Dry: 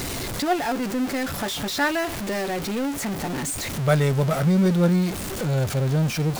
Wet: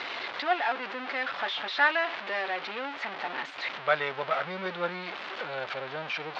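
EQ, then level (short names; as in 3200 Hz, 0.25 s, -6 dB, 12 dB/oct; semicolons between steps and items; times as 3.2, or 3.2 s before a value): HPF 930 Hz 12 dB/oct; LPF 3900 Hz 24 dB/oct; air absorption 150 m; +3.0 dB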